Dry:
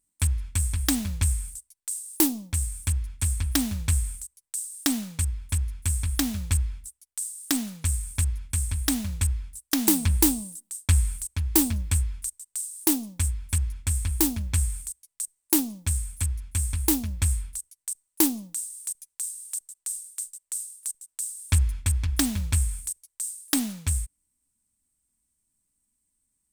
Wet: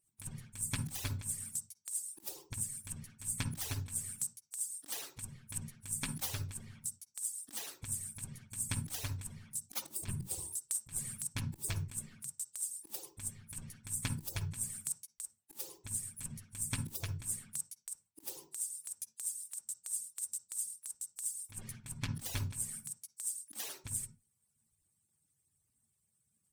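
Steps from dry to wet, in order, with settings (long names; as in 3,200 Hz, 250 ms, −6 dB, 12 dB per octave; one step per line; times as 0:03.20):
harmonic-percussive split with one part muted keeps percussive
compressor whose output falls as the input rises −35 dBFS, ratio −0.5
on a send: convolution reverb, pre-delay 47 ms, DRR 10 dB
on the sum: level −4 dB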